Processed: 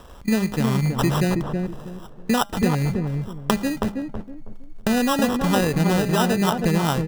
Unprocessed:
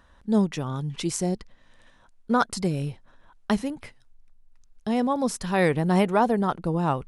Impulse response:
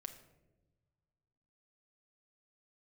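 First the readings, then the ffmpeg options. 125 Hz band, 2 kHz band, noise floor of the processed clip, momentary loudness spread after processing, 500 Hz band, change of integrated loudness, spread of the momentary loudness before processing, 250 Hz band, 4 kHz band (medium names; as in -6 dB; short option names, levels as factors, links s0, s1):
+6.5 dB, +4.5 dB, -42 dBFS, 12 LU, +2.0 dB, +3.5 dB, 12 LU, +4.5 dB, +8.5 dB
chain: -filter_complex "[0:a]equalizer=f=150:t=o:w=0.77:g=3,asplit=2[s0][s1];[s1]acrusher=bits=4:mode=log:mix=0:aa=0.000001,volume=0.562[s2];[s0][s2]amix=inputs=2:normalize=0,acompressor=threshold=0.0398:ratio=5,bandreject=f=205.1:t=h:w=4,bandreject=f=410.2:t=h:w=4,bandreject=f=615.3:t=h:w=4,bandreject=f=820.4:t=h:w=4,bandreject=f=1025.5:t=h:w=4,acrusher=samples=20:mix=1:aa=0.000001,asplit=2[s3][s4];[s4]adelay=322,lowpass=f=810:p=1,volume=0.708,asplit=2[s5][s6];[s6]adelay=322,lowpass=f=810:p=1,volume=0.3,asplit=2[s7][s8];[s8]adelay=322,lowpass=f=810:p=1,volume=0.3,asplit=2[s9][s10];[s10]adelay=322,lowpass=f=810:p=1,volume=0.3[s11];[s3][s5][s7][s9][s11]amix=inputs=5:normalize=0,volume=2.82"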